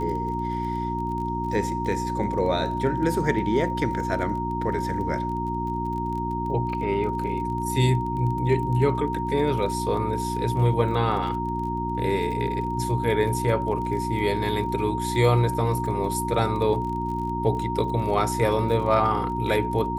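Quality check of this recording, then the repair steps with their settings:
crackle 29 per s -33 dBFS
hum 60 Hz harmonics 6 -30 dBFS
whine 930 Hz -28 dBFS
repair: de-click; de-hum 60 Hz, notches 6; band-stop 930 Hz, Q 30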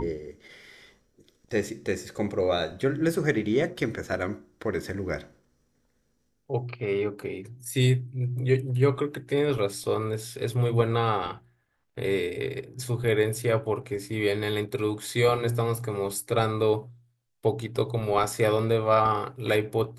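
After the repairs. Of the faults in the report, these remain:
nothing left

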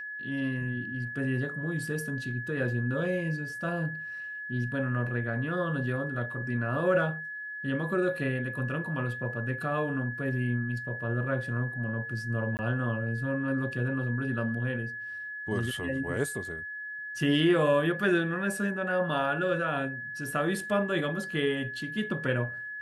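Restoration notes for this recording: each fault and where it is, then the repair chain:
whine 1.7 kHz -36 dBFS
12.57–12.59 s: dropout 19 ms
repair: band-stop 1.7 kHz, Q 30; interpolate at 12.57 s, 19 ms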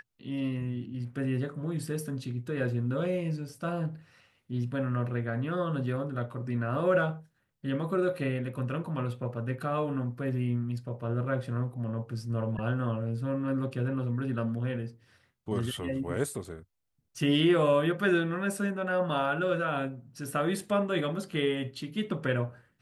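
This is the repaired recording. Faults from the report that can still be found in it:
nothing left

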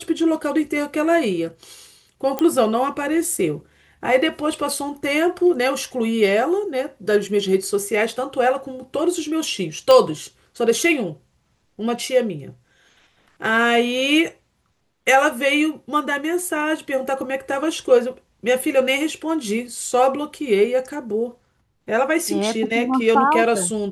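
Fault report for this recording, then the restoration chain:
2.39 s: pop -8 dBFS
9.91 s: pop -5 dBFS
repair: de-click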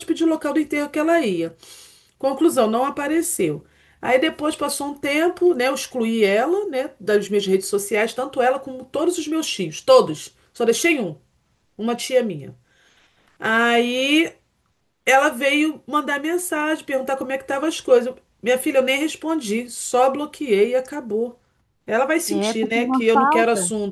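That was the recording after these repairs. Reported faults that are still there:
nothing left

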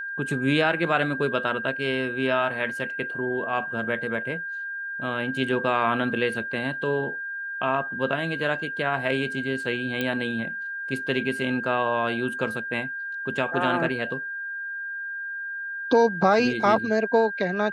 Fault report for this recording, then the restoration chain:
whine 1.6 kHz -30 dBFS
10.01 s: pop -13 dBFS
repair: de-click; band-stop 1.6 kHz, Q 30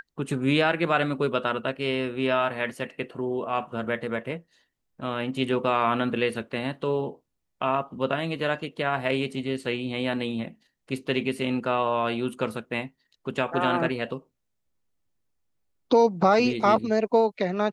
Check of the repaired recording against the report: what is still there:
nothing left

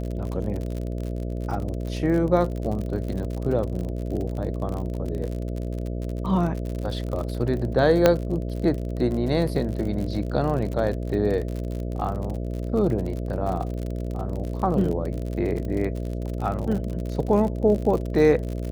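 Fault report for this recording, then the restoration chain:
buzz 60 Hz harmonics 11 -29 dBFS
crackle 50 per s -29 dBFS
8.06 s: pop -3 dBFS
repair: de-click; de-hum 60 Hz, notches 11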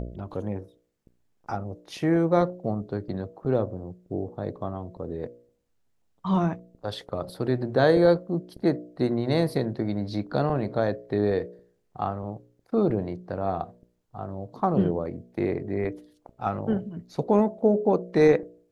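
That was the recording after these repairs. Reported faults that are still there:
nothing left

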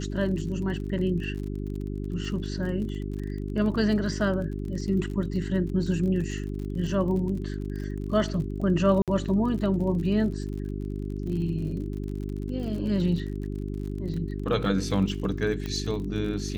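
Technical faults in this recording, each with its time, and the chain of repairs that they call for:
crackle 46 per s -35 dBFS
hum 50 Hz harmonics 8 -32 dBFS
9.02–9.08 s: dropout 57 ms
15.66 s: pop -19 dBFS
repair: de-click; de-hum 50 Hz, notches 8; interpolate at 9.02 s, 57 ms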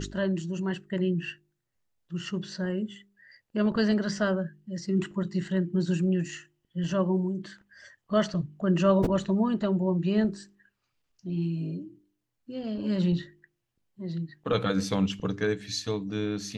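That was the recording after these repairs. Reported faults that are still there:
nothing left

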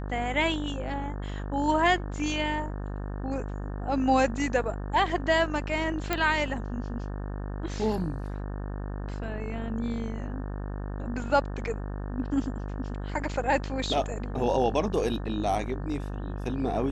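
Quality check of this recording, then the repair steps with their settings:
buzz 50 Hz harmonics 36 -34 dBFS
6.13 s: pop -12 dBFS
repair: de-click; de-hum 50 Hz, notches 36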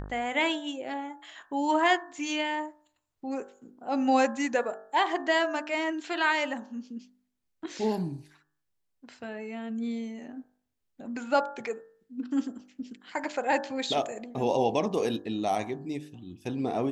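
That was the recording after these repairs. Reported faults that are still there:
nothing left

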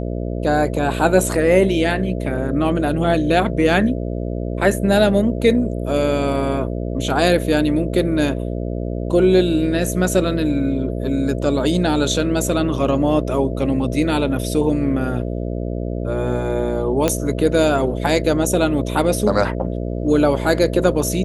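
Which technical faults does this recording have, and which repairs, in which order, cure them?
buzz 60 Hz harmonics 11 -24 dBFS
17.08 s: pop -3 dBFS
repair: de-click; de-hum 60 Hz, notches 11

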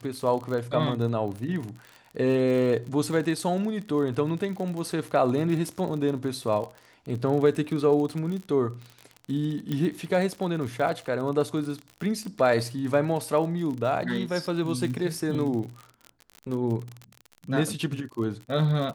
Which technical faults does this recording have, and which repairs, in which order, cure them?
crackle 46 per s -32 dBFS
9.72 s: pop -17 dBFS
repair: de-click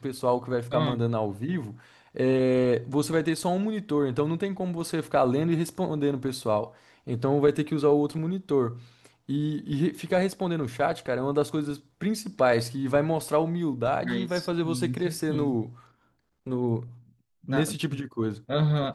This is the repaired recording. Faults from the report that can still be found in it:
nothing left

